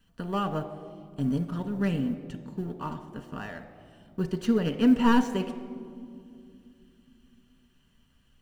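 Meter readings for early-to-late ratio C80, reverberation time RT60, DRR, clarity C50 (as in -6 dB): 12.5 dB, 2.4 s, 5.0 dB, 10.5 dB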